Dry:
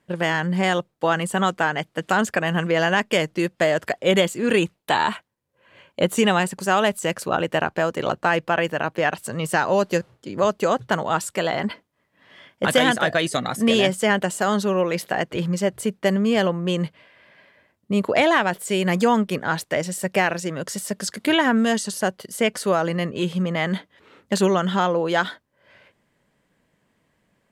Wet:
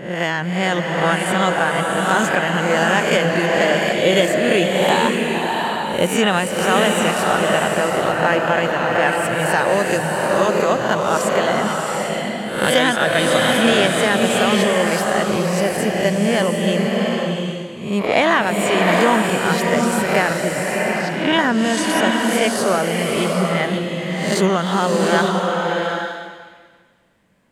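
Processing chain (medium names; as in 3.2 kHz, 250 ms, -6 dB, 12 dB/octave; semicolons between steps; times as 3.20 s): reverse spectral sustain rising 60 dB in 0.60 s; 20.22–21.33 s: low-pass 3 kHz 12 dB/octave; swelling reverb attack 770 ms, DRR 0.5 dB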